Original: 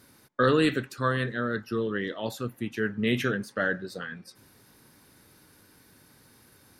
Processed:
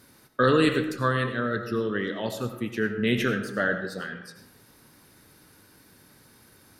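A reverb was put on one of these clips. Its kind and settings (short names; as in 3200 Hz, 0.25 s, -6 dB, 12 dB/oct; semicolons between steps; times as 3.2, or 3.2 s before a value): digital reverb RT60 0.84 s, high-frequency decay 0.5×, pre-delay 50 ms, DRR 7.5 dB; gain +1.5 dB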